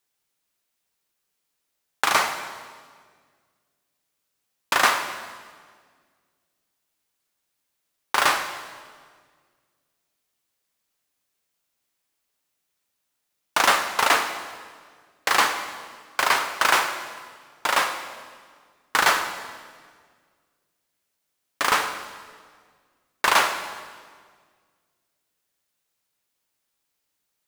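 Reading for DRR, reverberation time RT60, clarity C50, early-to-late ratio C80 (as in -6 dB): 7.0 dB, 1.8 s, 9.0 dB, 10.0 dB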